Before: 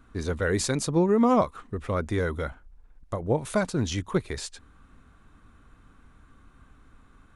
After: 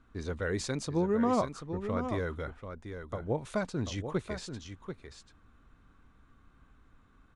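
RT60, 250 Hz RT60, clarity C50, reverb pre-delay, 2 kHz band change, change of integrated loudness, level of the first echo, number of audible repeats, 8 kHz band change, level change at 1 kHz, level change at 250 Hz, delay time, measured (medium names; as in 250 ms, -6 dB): no reverb, no reverb, no reverb, no reverb, -6.5 dB, -7.5 dB, -8.5 dB, 1, -10.0 dB, -6.5 dB, -6.5 dB, 738 ms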